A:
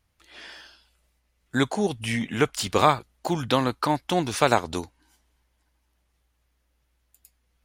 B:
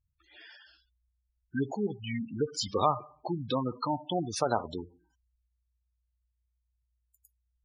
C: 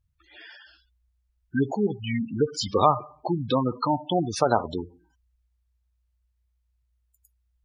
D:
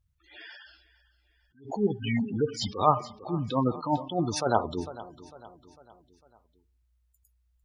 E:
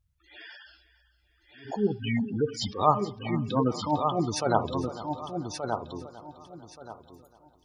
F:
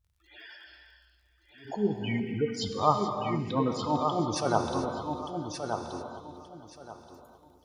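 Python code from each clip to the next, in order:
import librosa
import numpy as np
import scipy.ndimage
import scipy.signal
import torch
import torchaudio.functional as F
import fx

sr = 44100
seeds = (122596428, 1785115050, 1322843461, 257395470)

y1 = fx.dynamic_eq(x, sr, hz=5300.0, q=1.2, threshold_db=-46.0, ratio=4.0, max_db=7)
y1 = fx.rev_schroeder(y1, sr, rt60_s=0.5, comb_ms=31, drr_db=14.0)
y1 = fx.spec_gate(y1, sr, threshold_db=-10, keep='strong')
y1 = y1 * librosa.db_to_amplitude(-6.5)
y2 = fx.high_shelf(y1, sr, hz=4800.0, db=-7.0)
y2 = y2 * librosa.db_to_amplitude(7.0)
y3 = fx.echo_feedback(y2, sr, ms=451, feedback_pct=48, wet_db=-19)
y3 = fx.attack_slew(y3, sr, db_per_s=160.0)
y4 = fx.echo_feedback(y3, sr, ms=1177, feedback_pct=22, wet_db=-6)
y5 = fx.dmg_crackle(y4, sr, seeds[0], per_s=48.0, level_db=-56.0)
y5 = fx.rev_gated(y5, sr, seeds[1], gate_ms=460, shape='flat', drr_db=5.0)
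y5 = y5 * librosa.db_to_amplitude(-2.5)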